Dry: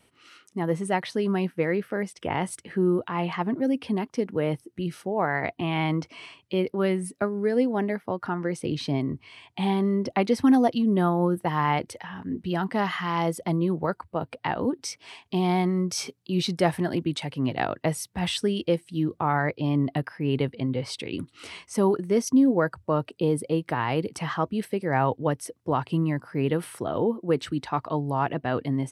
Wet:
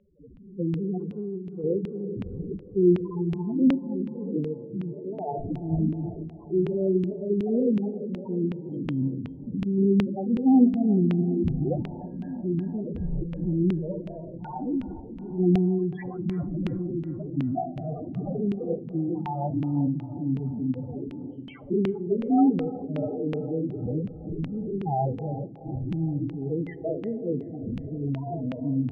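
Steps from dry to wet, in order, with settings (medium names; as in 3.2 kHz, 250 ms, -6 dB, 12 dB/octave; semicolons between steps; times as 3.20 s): spectrogram pixelated in time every 200 ms; treble shelf 2.6 kHz +11 dB; saturation -12.5 dBFS, distortion -24 dB; peaking EQ 3.3 kHz +3.5 dB 0.45 oct; decimation with a swept rate 25×, swing 160% 0.55 Hz; loudest bins only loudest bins 4; on a send at -10 dB: reverberation RT60 5.0 s, pre-delay 38 ms; on the sum: LFO low-pass saw down 2.7 Hz 210–2800 Hz; 1.13–1.64 s: compression 6:1, threshold -33 dBFS, peak gain reduction 11.5 dB; random flutter of the level, depth 60%; trim +5 dB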